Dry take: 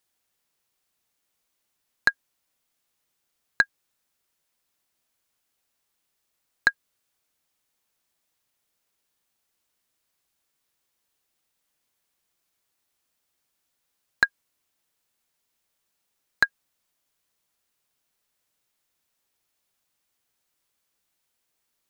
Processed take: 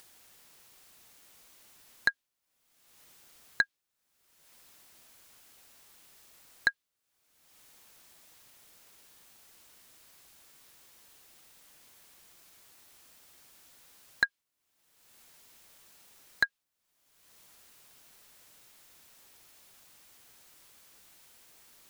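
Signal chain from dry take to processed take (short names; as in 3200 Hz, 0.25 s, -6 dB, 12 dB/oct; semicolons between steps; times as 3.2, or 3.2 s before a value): dynamic EQ 3400 Hz, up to +7 dB, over -37 dBFS, Q 0.85; upward compressor, threshold -29 dBFS; gain -8 dB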